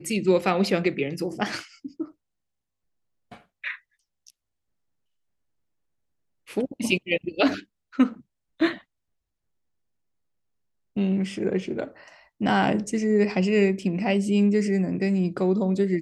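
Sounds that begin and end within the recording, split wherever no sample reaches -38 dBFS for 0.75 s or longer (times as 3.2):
3.32–4.3
6.48–8.78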